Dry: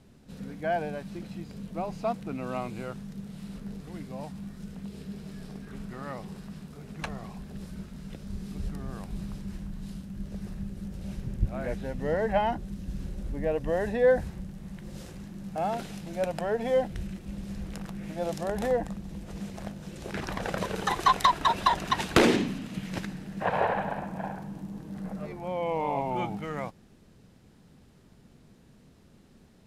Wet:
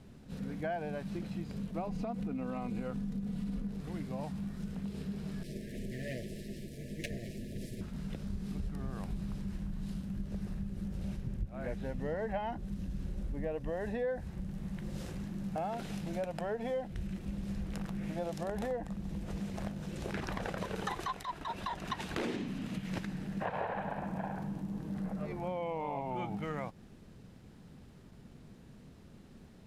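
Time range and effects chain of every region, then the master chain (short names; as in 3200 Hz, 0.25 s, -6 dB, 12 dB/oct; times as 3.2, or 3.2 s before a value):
1.87–3.69 low shelf 470 Hz +7.5 dB + compressor, threshold -31 dBFS + comb 4.1 ms, depth 49%
5.43–7.81 minimum comb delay 8.6 ms + Chebyshev band-stop 660–1700 Hz, order 5 + high shelf 4300 Hz +6 dB
whole clip: tone controls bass +2 dB, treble -3 dB; compressor 5:1, threshold -35 dBFS; attack slew limiter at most 200 dB/s; gain +1 dB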